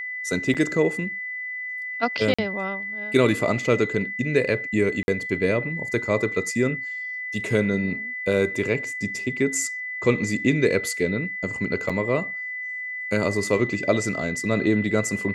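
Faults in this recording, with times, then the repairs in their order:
whine 2 kHz -29 dBFS
0.54–0.55 s: dropout 6.9 ms
2.34–2.38 s: dropout 45 ms
5.03–5.08 s: dropout 51 ms
11.89–11.90 s: dropout 6.3 ms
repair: band-stop 2 kHz, Q 30; interpolate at 0.54 s, 6.9 ms; interpolate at 2.34 s, 45 ms; interpolate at 5.03 s, 51 ms; interpolate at 11.89 s, 6.3 ms

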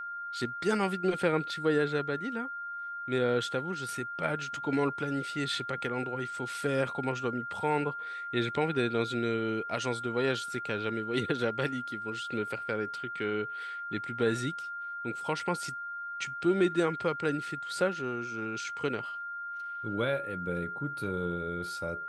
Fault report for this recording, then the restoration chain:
whine 1.4 kHz -36 dBFS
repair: band-stop 1.4 kHz, Q 30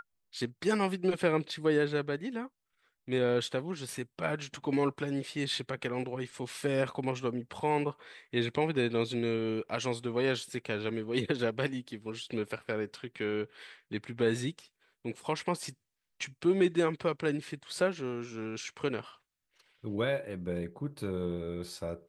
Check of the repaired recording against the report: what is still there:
nothing left

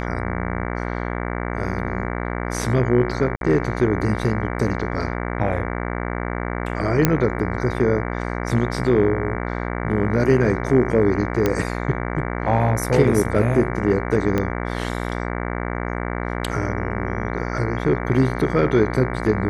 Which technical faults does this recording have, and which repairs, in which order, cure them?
buzz 60 Hz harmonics 38 -26 dBFS
3.36–3.41 s: dropout 52 ms
7.05 s: pop -1 dBFS
11.46 s: pop -6 dBFS
14.38 s: pop -9 dBFS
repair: de-click; de-hum 60 Hz, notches 38; interpolate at 3.36 s, 52 ms

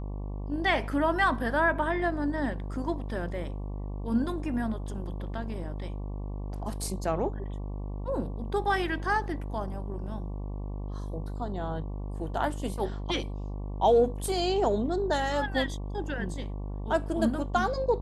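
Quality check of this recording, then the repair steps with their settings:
buzz 50 Hz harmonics 23 -35 dBFS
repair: de-hum 50 Hz, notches 23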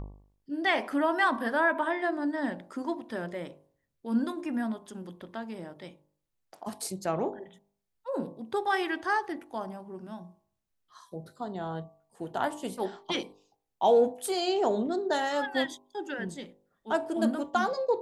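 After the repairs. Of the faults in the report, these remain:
nothing left

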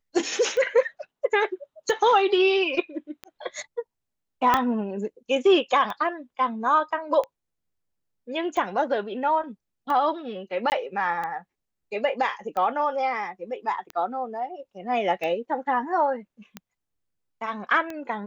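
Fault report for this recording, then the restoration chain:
tick 45 rpm -19 dBFS
4.54 s: pop -6 dBFS
10.70–10.72 s: dropout 19 ms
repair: de-click; interpolate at 10.70 s, 19 ms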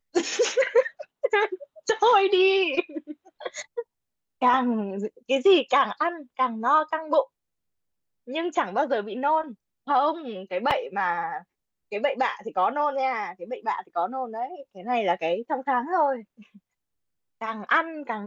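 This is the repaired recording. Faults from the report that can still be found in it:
4.54 s: pop

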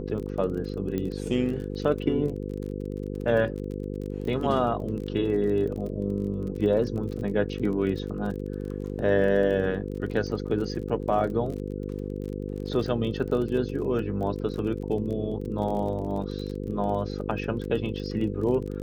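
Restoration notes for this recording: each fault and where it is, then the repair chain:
buzz 50 Hz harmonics 10 -33 dBFS
crackle 30 per s -34 dBFS
0.98 s: pop -18 dBFS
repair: de-click; de-hum 50 Hz, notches 10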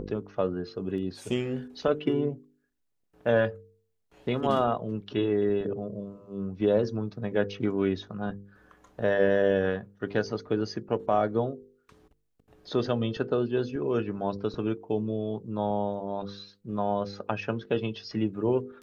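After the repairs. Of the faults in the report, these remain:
0.98 s: pop

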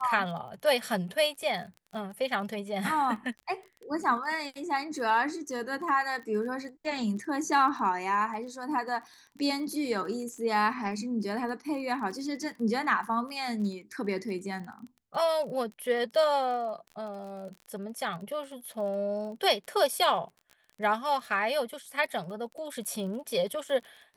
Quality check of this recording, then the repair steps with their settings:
crackle 26 per s -39 dBFS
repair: de-click

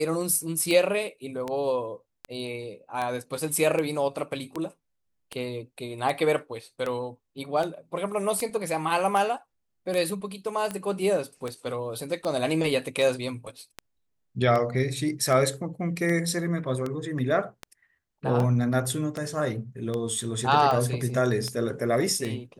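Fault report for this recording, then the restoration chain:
tick 78 rpm -17 dBFS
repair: de-click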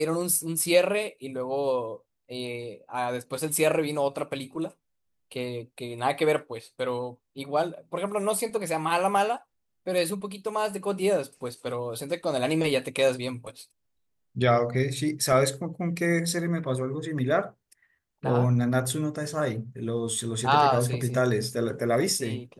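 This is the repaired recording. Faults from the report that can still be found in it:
nothing left

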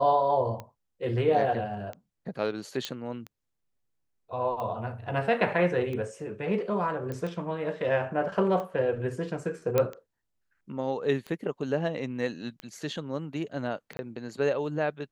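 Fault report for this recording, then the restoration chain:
tick 45 rpm -24 dBFS
2.85 s: pop -16 dBFS
7.12 s: pop -23 dBFS
9.78 s: pop -11 dBFS
13.97–13.99 s: dropout 20 ms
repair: de-click; interpolate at 13.97 s, 20 ms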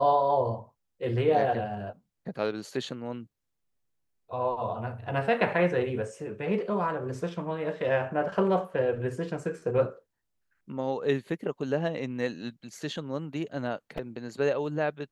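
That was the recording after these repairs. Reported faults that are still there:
nothing left

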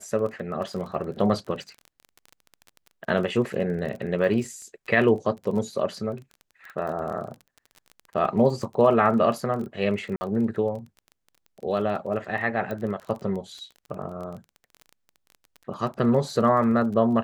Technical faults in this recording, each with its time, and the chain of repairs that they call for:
crackle 22 per s -33 dBFS
10.16–10.21 s: dropout 50 ms
12.71 s: pop -20 dBFS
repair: de-click; interpolate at 10.16 s, 50 ms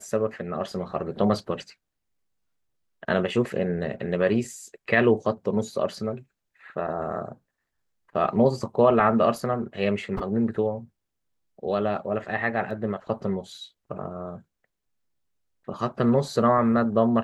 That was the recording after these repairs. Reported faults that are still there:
12.71 s: pop

